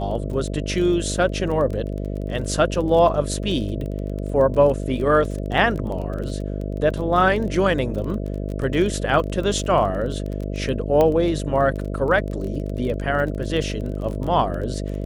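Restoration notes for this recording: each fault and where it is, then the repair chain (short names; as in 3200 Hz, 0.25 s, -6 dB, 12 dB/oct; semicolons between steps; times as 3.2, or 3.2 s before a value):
buzz 50 Hz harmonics 13 -27 dBFS
crackle 21/s -28 dBFS
11.01 pop -8 dBFS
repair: de-click; de-hum 50 Hz, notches 13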